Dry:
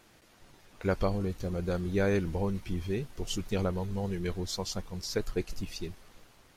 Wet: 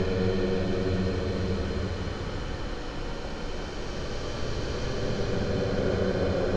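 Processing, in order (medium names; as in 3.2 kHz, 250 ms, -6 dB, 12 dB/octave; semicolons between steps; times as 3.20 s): spectral levelling over time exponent 0.4; peaking EQ 11 kHz -7 dB 1.2 oct; Paulstretch 36×, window 0.10 s, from 1.28 s; distance through air 98 m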